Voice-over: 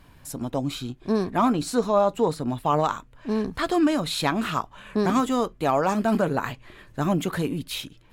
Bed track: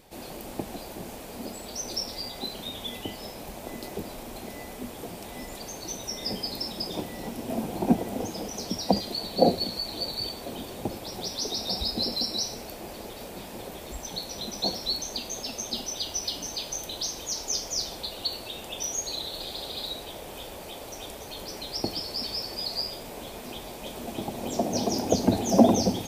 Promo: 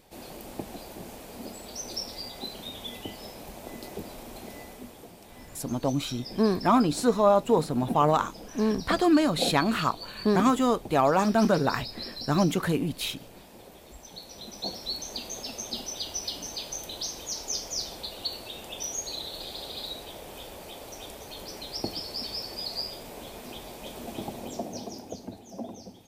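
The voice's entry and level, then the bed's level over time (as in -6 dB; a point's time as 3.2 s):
5.30 s, 0.0 dB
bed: 4.57 s -3 dB
5.13 s -10 dB
14.06 s -10 dB
15.2 s -2.5 dB
24.28 s -2.5 dB
25.46 s -21 dB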